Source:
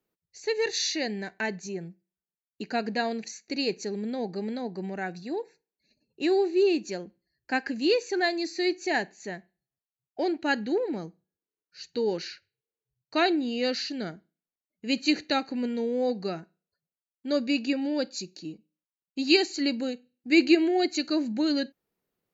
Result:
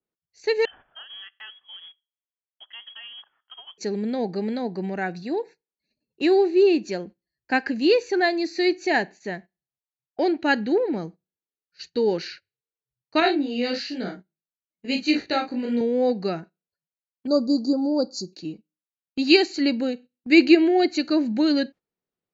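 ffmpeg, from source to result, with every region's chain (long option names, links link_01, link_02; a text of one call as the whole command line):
ffmpeg -i in.wav -filter_complex "[0:a]asettb=1/sr,asplit=3[link_01][link_02][link_03];[link_01]atrim=end=0.654[link_04];[link_02]atrim=start=0.65:end=3.78,asetpts=PTS-STARTPTS,afade=type=in:duration=0.004:curve=qsin,afade=type=out:start_time=3.126:duration=0.004:curve=qsin,acompressor=threshold=-43dB:ratio=8:attack=3.2:release=140:knee=1:detection=peak,acrusher=bits=3:mode=log:mix=0:aa=0.000001,lowpass=frequency=3000:width_type=q:width=0.5098,lowpass=frequency=3000:width_type=q:width=0.6013,lowpass=frequency=3000:width_type=q:width=0.9,lowpass=frequency=3000:width_type=q:width=2.563,afreqshift=-3500[link_05];[link_03]atrim=start=3.776[link_06];[link_04][link_05]acrossfade=duration=0.004:curve1=hsin:curve2=qsin[link_07];[link_07][link_06]acrossfade=duration=0.004:curve1=qsin:curve2=hsin,asettb=1/sr,asplit=3[link_08][link_09][link_10];[link_08]atrim=end=13.204[link_11];[link_09]atrim=start=13.2:end=15.81,asetpts=PTS-STARTPTS,afade=type=in:duration=0.004:curve=qsin,afade=type=out:start_time=2.606:duration=0.004:curve=qsin,asplit=2[link_12][link_13];[link_13]adelay=38,volume=-6dB[link_14];[link_12][link_14]amix=inputs=2:normalize=0,atrim=end_sample=115101,flanger=delay=15.5:depth=5.1:speed=1.1[link_15];[link_10]atrim=start=15.806[link_16];[link_11][link_15]acrossfade=duration=0.004:curve1=hsin:curve2=qsin[link_17];[link_17][link_16]acrossfade=duration=0.004:curve1=qsin:curve2=hsin,asettb=1/sr,asplit=3[link_18][link_19][link_20];[link_18]atrim=end=17.274[link_21];[link_19]atrim=start=17.27:end=18.33,asetpts=PTS-STARTPTS,afade=type=in:duration=0.004:curve=qsin,afade=type=out:start_time=1.056:duration=0.004:curve=qsin,asuperstop=centerf=2400:order=12:qfactor=0.74,equalizer=frequency=2900:width_type=o:width=1.6:gain=6[link_22];[link_20]atrim=start=18.326[link_23];[link_21][link_22]acrossfade=duration=0.004:curve1=hsin:curve2=qsin[link_24];[link_24][link_23]acrossfade=duration=0.004:curve1=qsin:curve2=hsin,agate=range=-13dB:threshold=-46dB:ratio=16:detection=peak,lowpass=5300,adynamicequalizer=threshold=0.01:dfrequency=1900:dqfactor=0.7:tfrequency=1900:tqfactor=0.7:attack=5:release=100:ratio=0.375:range=2:mode=cutabove:tftype=highshelf,volume=5.5dB" out.wav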